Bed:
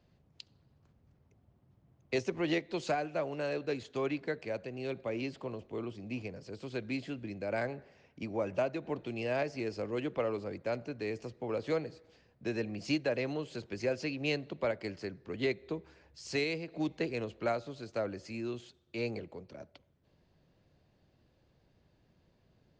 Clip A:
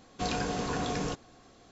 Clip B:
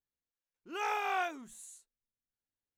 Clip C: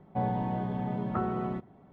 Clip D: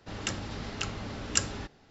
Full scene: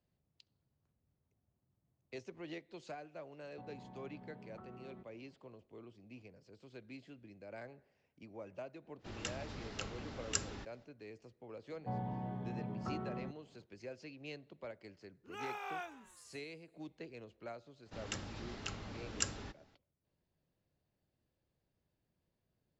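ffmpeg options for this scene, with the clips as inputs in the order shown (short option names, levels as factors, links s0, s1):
-filter_complex "[3:a]asplit=2[s0][s1];[4:a]asplit=2[s2][s3];[0:a]volume=0.178[s4];[s0]acompressor=threshold=0.0178:ratio=6:attack=3.2:release=140:knee=1:detection=peak[s5];[s1]equalizer=f=120:w=1.5:g=4[s6];[2:a]asplit=5[s7][s8][s9][s10][s11];[s8]adelay=131,afreqshift=110,volume=0.119[s12];[s9]adelay=262,afreqshift=220,volume=0.0631[s13];[s10]adelay=393,afreqshift=330,volume=0.0335[s14];[s11]adelay=524,afreqshift=440,volume=0.0178[s15];[s7][s12][s13][s14][s15]amix=inputs=5:normalize=0[s16];[s5]atrim=end=1.92,asetpts=PTS-STARTPTS,volume=0.178,afade=t=in:d=0.004:c=hsin,afade=t=out:st=1.916:d=0.004:c=hsin,adelay=3430[s17];[s2]atrim=end=1.9,asetpts=PTS-STARTPTS,volume=0.355,afade=t=in:d=0.05,afade=t=out:st=1.85:d=0.05,adelay=396018S[s18];[s6]atrim=end=1.92,asetpts=PTS-STARTPTS,volume=0.266,afade=t=in:d=0.004:c=hsin,afade=t=out:st=1.916:d=0.004:c=hsin,adelay=11710[s19];[s16]atrim=end=2.77,asetpts=PTS-STARTPTS,volume=0.316,afade=t=in:d=0.004:c=hsin,afade=t=out:st=2.766:d=0.004:c=hsin,adelay=14580[s20];[s3]atrim=end=1.9,asetpts=PTS-STARTPTS,volume=0.355,afade=t=in:d=0.004:c=hsin,afade=t=out:st=1.896:d=0.004:c=hsin,adelay=17850[s21];[s4][s17][s18][s19][s20][s21]amix=inputs=6:normalize=0"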